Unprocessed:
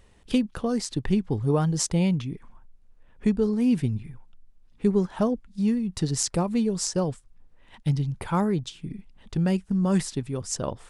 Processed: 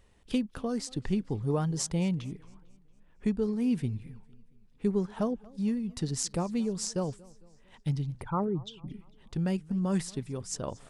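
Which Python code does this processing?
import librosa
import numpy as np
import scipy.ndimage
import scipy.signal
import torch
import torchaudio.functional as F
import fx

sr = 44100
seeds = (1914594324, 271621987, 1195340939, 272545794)

y = fx.envelope_sharpen(x, sr, power=2.0, at=(8.22, 8.88))
y = fx.echo_warbled(y, sr, ms=227, feedback_pct=48, rate_hz=2.8, cents=157, wet_db=-23.5)
y = F.gain(torch.from_numpy(y), -6.0).numpy()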